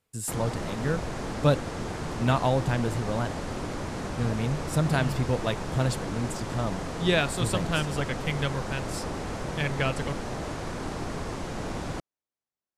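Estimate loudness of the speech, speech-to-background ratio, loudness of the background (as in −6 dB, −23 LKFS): −29.0 LKFS, 5.5 dB, −34.5 LKFS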